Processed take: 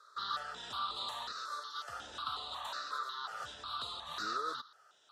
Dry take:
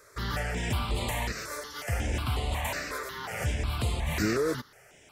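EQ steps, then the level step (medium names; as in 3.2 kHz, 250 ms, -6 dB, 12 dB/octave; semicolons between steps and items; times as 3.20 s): two resonant band-passes 2.2 kHz, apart 1.6 oct; +5.0 dB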